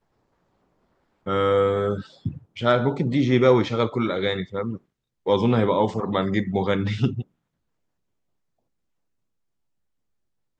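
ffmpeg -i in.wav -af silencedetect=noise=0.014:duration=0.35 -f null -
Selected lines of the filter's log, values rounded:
silence_start: 0.00
silence_end: 1.26 | silence_duration: 1.26
silence_start: 4.77
silence_end: 5.26 | silence_duration: 0.49
silence_start: 7.22
silence_end: 10.59 | silence_duration: 3.37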